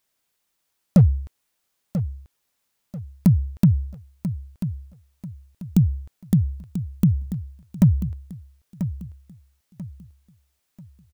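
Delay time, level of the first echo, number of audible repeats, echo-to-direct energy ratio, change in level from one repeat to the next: 989 ms, −11.0 dB, 3, −10.5 dB, −9.5 dB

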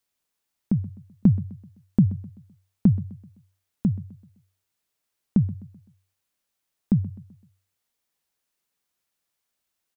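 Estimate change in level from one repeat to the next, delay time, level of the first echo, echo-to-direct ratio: −7.5 dB, 128 ms, −18.0 dB, −17.0 dB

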